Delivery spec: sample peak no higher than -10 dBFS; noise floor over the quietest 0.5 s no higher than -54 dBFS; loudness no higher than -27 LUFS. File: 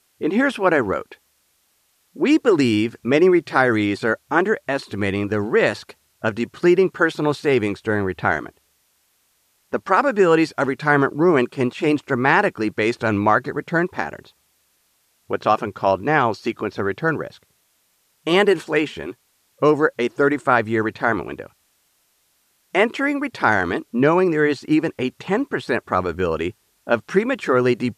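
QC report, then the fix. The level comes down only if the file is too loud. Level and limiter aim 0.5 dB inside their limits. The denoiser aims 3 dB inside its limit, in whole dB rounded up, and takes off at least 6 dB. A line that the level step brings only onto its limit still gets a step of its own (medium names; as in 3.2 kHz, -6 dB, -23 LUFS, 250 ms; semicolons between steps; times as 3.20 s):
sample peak -2.5 dBFS: fail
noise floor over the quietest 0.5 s -64 dBFS: pass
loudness -20.0 LUFS: fail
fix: trim -7.5 dB; peak limiter -10.5 dBFS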